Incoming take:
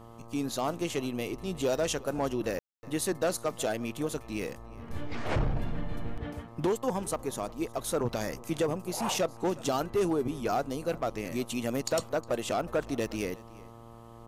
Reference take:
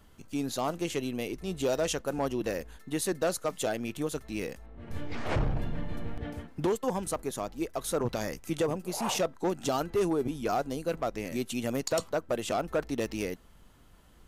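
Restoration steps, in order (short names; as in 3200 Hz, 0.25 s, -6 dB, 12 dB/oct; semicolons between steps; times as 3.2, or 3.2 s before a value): de-hum 115.6 Hz, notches 11; room tone fill 2.59–2.83; inverse comb 0.361 s -21.5 dB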